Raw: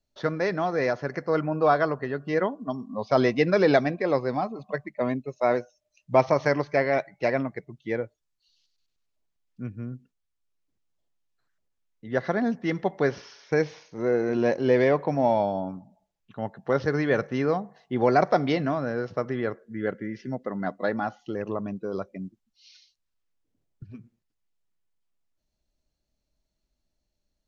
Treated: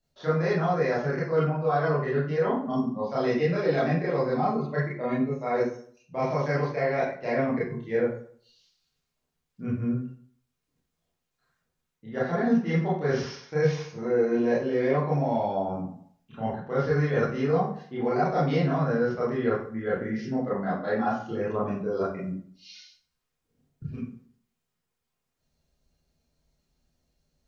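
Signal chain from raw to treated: reverse; compressor 5:1, threshold -31 dBFS, peak gain reduction 15.5 dB; reverse; reverb RT60 0.55 s, pre-delay 25 ms, DRR -8.5 dB; gain -1.5 dB

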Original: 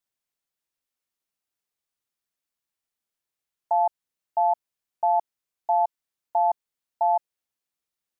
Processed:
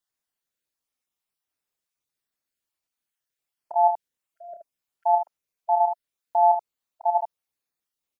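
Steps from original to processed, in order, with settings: random spectral dropouts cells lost 26%; early reflections 30 ms -7.5 dB, 76 ms -5.5 dB

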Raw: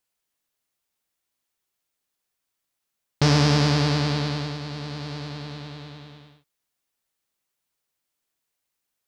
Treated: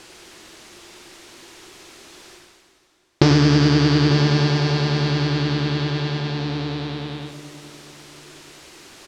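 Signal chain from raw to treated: on a send: tapped delay 96/894 ms -5.5/-11 dB; on the sum: reverse; upward compressor, threshold -23 dBFS; reverse; LPF 6100 Hz 12 dB/oct; compressor 5:1, threshold -22 dBFS, peak gain reduction 8.5 dB; bell 350 Hz +15 dB 0.34 oct; plate-style reverb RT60 4.7 s, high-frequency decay 0.8×, DRR 11 dB; gain +8 dB

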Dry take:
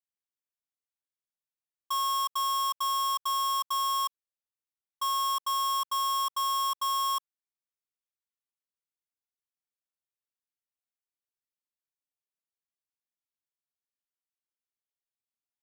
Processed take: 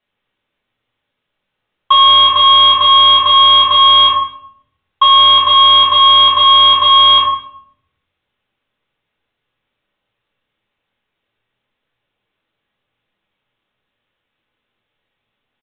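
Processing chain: doubler 26 ms -13 dB; shoebox room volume 150 m³, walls mixed, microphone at 1.4 m; downsampling 8000 Hz; maximiser +23 dB; gain -1 dB

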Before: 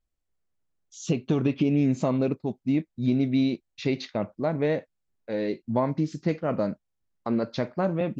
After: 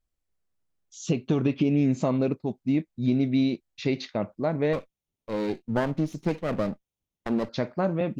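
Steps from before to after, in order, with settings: 4.73–7.49 minimum comb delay 0.32 ms

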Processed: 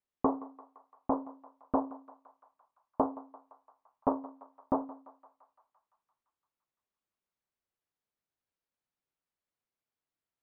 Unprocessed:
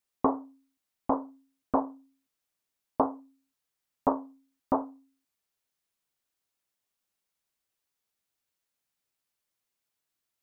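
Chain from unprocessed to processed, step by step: LPF 1200 Hz 6 dB/oct; on a send: thinning echo 0.171 s, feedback 79%, high-pass 780 Hz, level -15 dB; on the sum: gain -2 dB

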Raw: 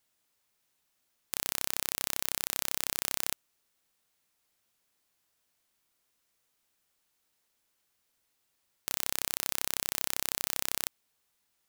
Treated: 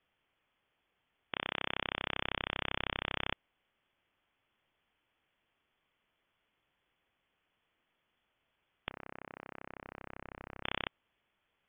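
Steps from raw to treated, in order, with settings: 8.9–10.64 differentiator; inverted band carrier 3400 Hz; gain +3.5 dB

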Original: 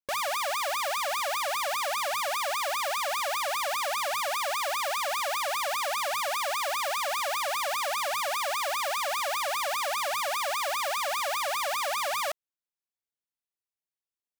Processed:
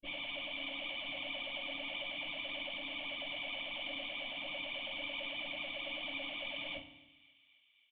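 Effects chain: minimum comb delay 0.3 ms; high shelf 2900 Hz +4 dB; limiter -24 dBFS, peak gain reduction 3.5 dB; plain phase-vocoder stretch 0.55×; vocal tract filter i; doubler 22 ms -12 dB; thinning echo 0.268 s, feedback 79%, high-pass 950 Hz, level -23.5 dB; FDN reverb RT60 0.84 s, low-frequency decay 1.45×, high-frequency decay 0.85×, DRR 5.5 dB; gain +13.5 dB

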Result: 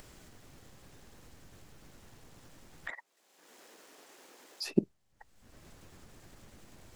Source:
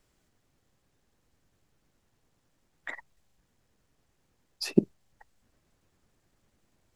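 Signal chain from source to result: 2.9–4.66 HPF 310 Hz 24 dB/oct; upward compressor, threshold -31 dBFS; gain -5 dB

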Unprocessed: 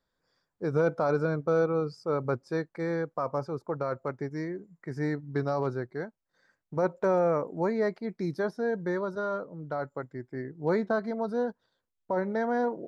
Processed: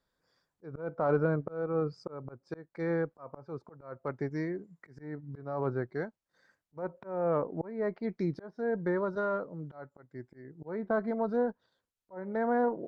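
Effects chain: treble ducked by the level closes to 1800 Hz, closed at -25.5 dBFS; auto swell 0.374 s; added harmonics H 4 -34 dB, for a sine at -16.5 dBFS

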